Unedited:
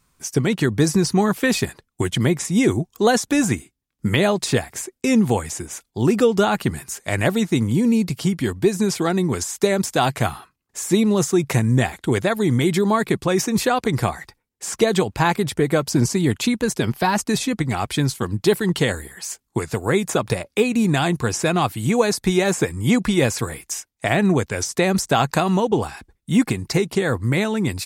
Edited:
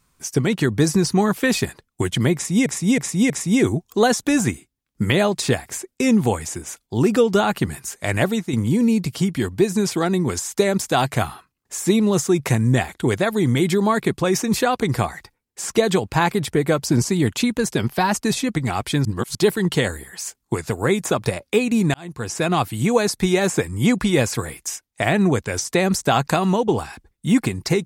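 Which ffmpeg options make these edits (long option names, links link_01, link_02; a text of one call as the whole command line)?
ffmpeg -i in.wav -filter_complex "[0:a]asplit=8[link_01][link_02][link_03][link_04][link_05][link_06][link_07][link_08];[link_01]atrim=end=2.662[link_09];[link_02]atrim=start=2.338:end=2.662[link_10];[link_03]atrim=start=2.338:end=2.662[link_11];[link_04]atrim=start=2.338:end=7.57,asetpts=PTS-STARTPTS,afade=type=out:start_time=4.952:duration=0.28:silence=0.398107[link_12];[link_05]atrim=start=7.57:end=18.092,asetpts=PTS-STARTPTS,afade=type=in:duration=0.004:curve=hsin:silence=0.398107[link_13];[link_06]atrim=start=18.088:end=18.392,asetpts=PTS-STARTPTS,areverse[link_14];[link_07]atrim=start=18.388:end=20.98,asetpts=PTS-STARTPTS,afade=type=out:start_time=2.588:duration=0.004:curve=hsin[link_15];[link_08]atrim=start=20.98,asetpts=PTS-STARTPTS,afade=type=in:duration=0.59[link_16];[link_09][link_10]acrossfade=duration=0.004:curve1=hsin:curve2=hsin[link_17];[link_17][link_11]acrossfade=duration=0.004:curve1=hsin:curve2=hsin[link_18];[link_12][link_13]concat=n=2:v=0:a=1[link_19];[link_18][link_19]acrossfade=duration=0.004:curve1=hsin:curve2=hsin[link_20];[link_20][link_14]acrossfade=duration=0.004:curve1=hsin:curve2=hsin[link_21];[link_15][link_16]concat=n=2:v=0:a=1[link_22];[link_21][link_22]acrossfade=duration=0.004:curve1=hsin:curve2=hsin" out.wav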